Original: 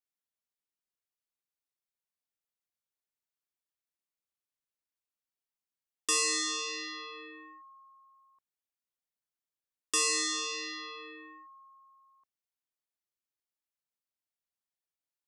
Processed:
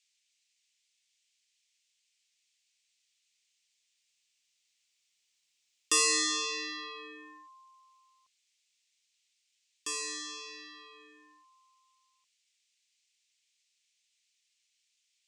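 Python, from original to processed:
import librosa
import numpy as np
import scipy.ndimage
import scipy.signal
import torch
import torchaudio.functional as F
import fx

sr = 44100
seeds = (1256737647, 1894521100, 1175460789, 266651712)

y = fx.doppler_pass(x, sr, speed_mps=12, closest_m=15.0, pass_at_s=5.86)
y = fx.dmg_noise_band(y, sr, seeds[0], low_hz=2200.0, high_hz=8000.0, level_db=-80.0)
y = F.gain(torch.from_numpy(y), 2.5).numpy()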